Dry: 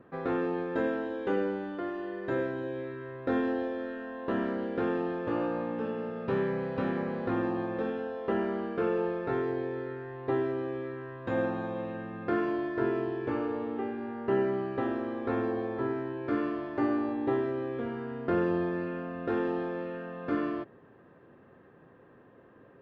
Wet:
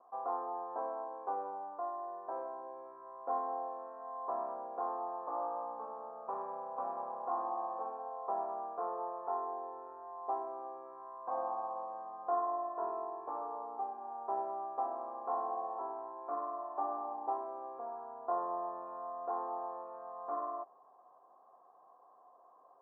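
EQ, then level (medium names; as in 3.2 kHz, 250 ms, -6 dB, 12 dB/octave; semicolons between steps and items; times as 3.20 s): cascade formant filter a; Bessel high-pass 520 Hz, order 2; resonant high shelf 2.1 kHz -13.5 dB, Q 1.5; +9.5 dB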